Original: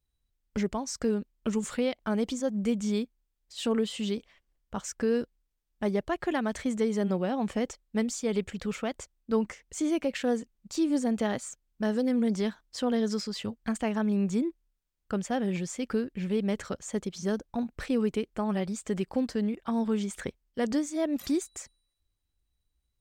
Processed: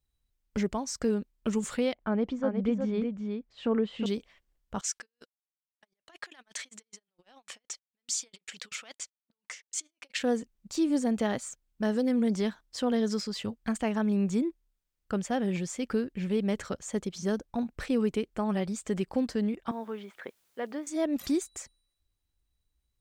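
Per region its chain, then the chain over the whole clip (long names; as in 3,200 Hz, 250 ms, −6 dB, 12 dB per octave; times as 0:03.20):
0:01.94–0:04.06: low-pass filter 2,000 Hz + single-tap delay 365 ms −5.5 dB
0:04.81–0:10.19: compressor whose output falls as the input rises −34 dBFS, ratio −0.5 + resonant band-pass 5,000 Hz, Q 0.66 + noise gate −54 dBFS, range −29 dB
0:19.71–0:20.87: Bessel high-pass filter 550 Hz + high-frequency loss of the air 380 metres + bit-depth reduction 12 bits, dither triangular
whole clip: no processing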